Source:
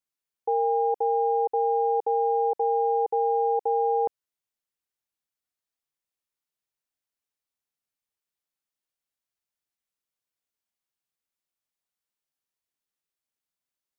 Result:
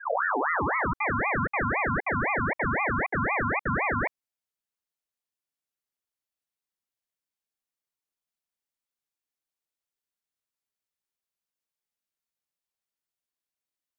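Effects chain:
turntable start at the beginning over 1.07 s
ring modulator whose carrier an LFO sweeps 1,100 Hz, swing 50%, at 3.9 Hz

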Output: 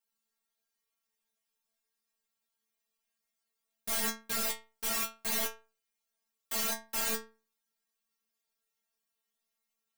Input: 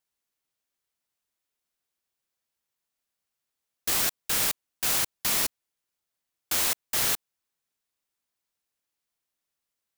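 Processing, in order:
stylus tracing distortion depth 0.31 ms
in parallel at −4.5 dB: wrap-around overflow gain 29.5 dB
on the sum: stiff-string resonator 220 Hz, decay 0.34 s, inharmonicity 0.002
level +8.5 dB

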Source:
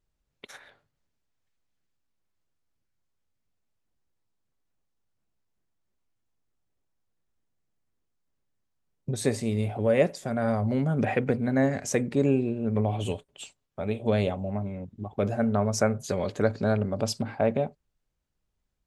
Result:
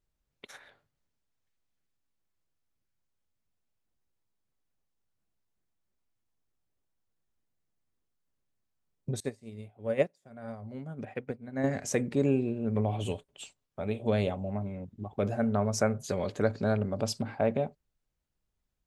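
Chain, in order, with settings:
0:09.20–0:11.64: expander for the loud parts 2.5 to 1, over −35 dBFS
level −3 dB

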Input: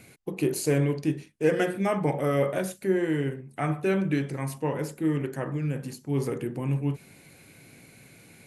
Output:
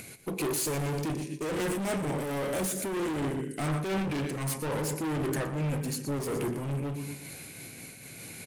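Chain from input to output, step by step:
high-shelf EQ 4,000 Hz +8 dB
upward compression, threshold −45 dBFS
0:01.11–0:03.68: graphic EQ with 10 bands 250 Hz +6 dB, 1,000 Hz −7 dB, 8,000 Hz +5 dB
repeating echo 119 ms, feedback 43%, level −12.5 dB
brickwall limiter −17.5 dBFS, peak gain reduction 8.5 dB
gain into a clipping stage and back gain 33 dB
amplitude modulation by smooth noise, depth 60%
level +7 dB

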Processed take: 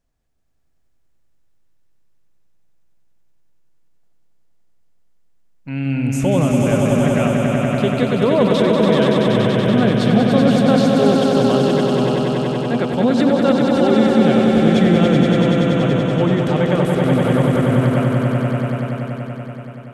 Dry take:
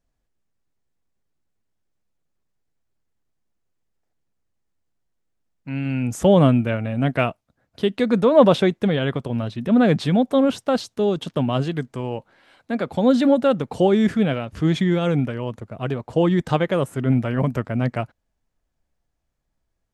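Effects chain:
brickwall limiter −12 dBFS, peak gain reduction 9.5 dB
on a send: echo that builds up and dies away 95 ms, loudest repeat 5, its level −5 dB
on the sum: level +2 dB

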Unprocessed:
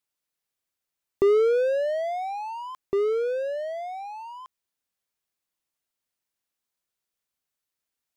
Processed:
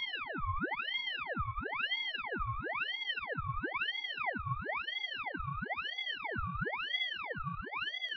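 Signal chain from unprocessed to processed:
gate on every frequency bin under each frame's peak −30 dB strong
extreme stretch with random phases 36×, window 0.25 s, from 0:03.52
on a send: backwards echo 73 ms −4 dB
on the sum: ring modulator whose carrier an LFO sweeps 1,600 Hz, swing 70%, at 1 Hz
level −5 dB

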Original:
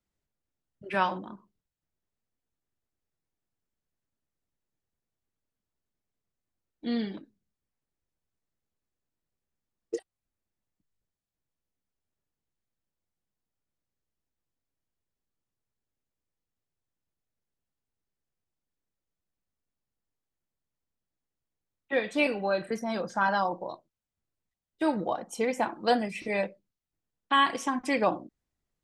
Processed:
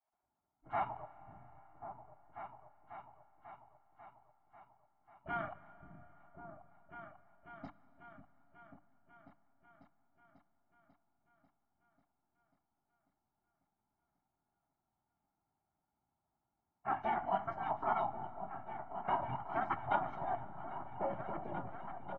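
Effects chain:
gate on every frequency bin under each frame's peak −20 dB weak
high-shelf EQ 2,600 Hz −6.5 dB
mains-hum notches 50/100/150/200/250/300 Hz
comb filter 1 ms, depth 94%
dynamic equaliser 410 Hz, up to −4 dB, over −59 dBFS, Q 1.2
tempo change 1.3×
low-pass filter sweep 1,400 Hz → 150 Hz, 0:19.82–0:23.82
formants moved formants −5 semitones
echo whose low-pass opens from repeat to repeat 543 ms, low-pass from 200 Hz, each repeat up 2 octaves, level −6 dB
convolution reverb RT60 5.1 s, pre-delay 15 ms, DRR 16.5 dB
level +6 dB

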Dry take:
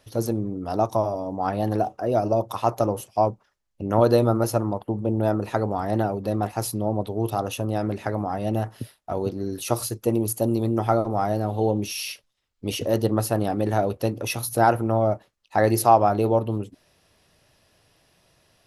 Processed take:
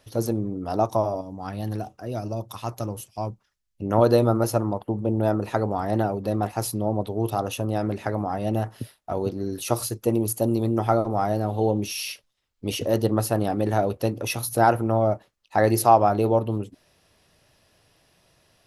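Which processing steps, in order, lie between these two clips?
0:01.21–0:03.82: parametric band 640 Hz −11.5 dB 2.6 octaves

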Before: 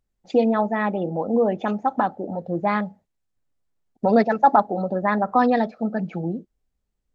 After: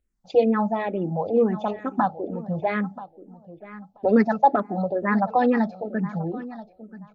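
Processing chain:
low-shelf EQ 480 Hz +3 dB
repeating echo 982 ms, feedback 18%, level −16.5 dB
frequency shifter mixed with the dry sound −2.2 Hz

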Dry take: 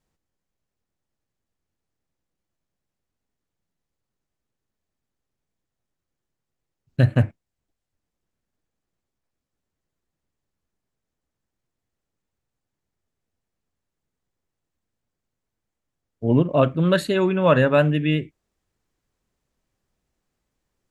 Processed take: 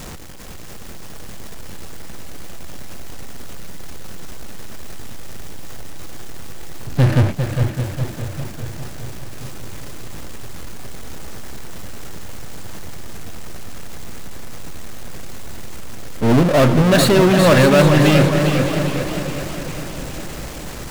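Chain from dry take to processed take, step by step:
power curve on the samples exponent 0.35
echo machine with several playback heads 203 ms, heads second and third, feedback 54%, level −11.5 dB
feedback echo with a swinging delay time 404 ms, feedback 54%, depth 113 cents, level −8 dB
level −2 dB

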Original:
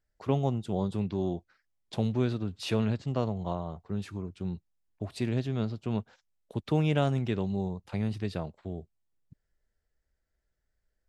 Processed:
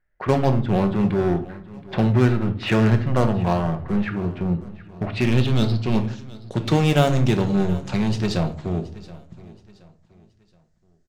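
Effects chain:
noise gate −59 dBFS, range −9 dB
low-pass filter sweep 1,900 Hz → 6,700 Hz, 0:04.90–0:06.16
in parallel at −3 dB: wave folding −33.5 dBFS
on the sum: repeating echo 724 ms, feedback 36%, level −19.5 dB
rectangular room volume 490 cubic metres, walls furnished, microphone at 0.98 metres
level +8 dB

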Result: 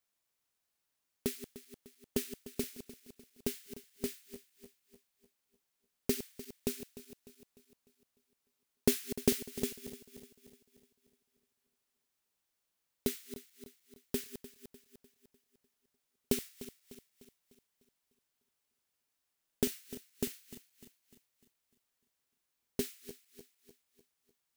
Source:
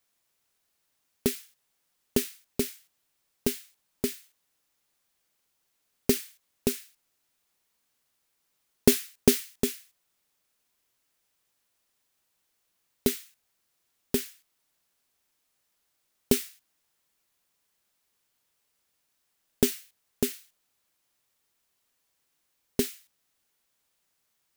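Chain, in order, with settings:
feedback delay that plays each chunk backwards 150 ms, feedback 68%, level −13 dB
level −8.5 dB

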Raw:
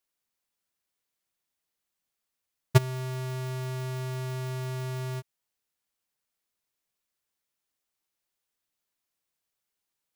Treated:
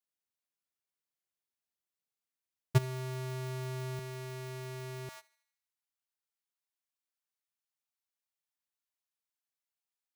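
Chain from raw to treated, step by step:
high-pass filter 57 Hz 24 dB per octave, from 0:03.99 140 Hz, from 0:05.09 640 Hz
leveller curve on the samples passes 1
feedback echo with a high-pass in the loop 78 ms, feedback 53%, high-pass 750 Hz, level −20.5 dB
level −8.5 dB

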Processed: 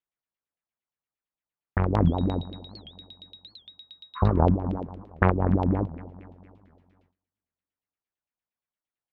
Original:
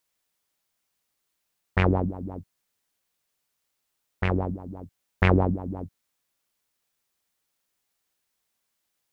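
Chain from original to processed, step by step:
brickwall limiter −13.5 dBFS, peak gain reduction 8 dB
0:04.18–0:04.40: healed spectral selection 1,000–3,300 Hz after
0:04.76–0:05.32: low-shelf EQ 100 Hz −9 dB
compressor whose output falls as the input rises −27 dBFS, ratio −0.5
harmonic generator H 3 −15 dB, 4 −16 dB, 5 −16 dB, 7 −25 dB, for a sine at −0.5 dBFS
on a send: delay with a low-pass on its return 240 ms, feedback 50%, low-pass 2,100 Hz, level −17.5 dB
0:02.07–0:04.23: on the sum: steady tone 3,800 Hz −43 dBFS
low-shelf EQ 450 Hz +6.5 dB
noise gate with hold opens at −58 dBFS
auto-filter low-pass saw down 8.7 Hz 710–3,200 Hz
wow of a warped record 78 rpm, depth 250 cents
level +2.5 dB

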